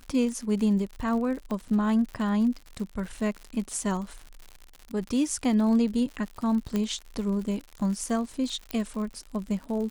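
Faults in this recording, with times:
crackle 100 per s -35 dBFS
1.51 s: pop -21 dBFS
6.76 s: pop -15 dBFS
8.71 s: pop -15 dBFS

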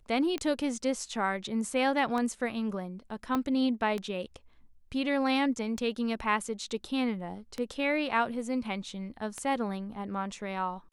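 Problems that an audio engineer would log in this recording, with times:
tick 33 1/3 rpm -20 dBFS
3.35 s: pop -17 dBFS

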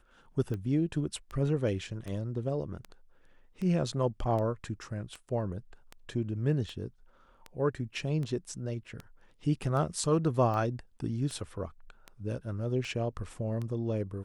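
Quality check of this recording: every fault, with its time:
tick 78 rpm -26 dBFS

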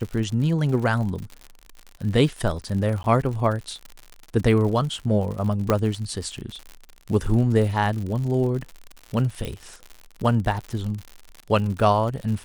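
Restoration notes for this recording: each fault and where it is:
crackle 79 per s -30 dBFS
3.03–3.04 s: dropout 11 ms
5.70 s: pop -7 dBFS
9.45 s: pop

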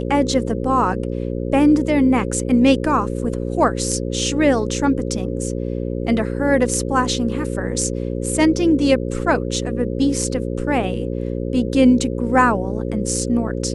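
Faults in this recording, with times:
buzz 60 Hz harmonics 9 -24 dBFS

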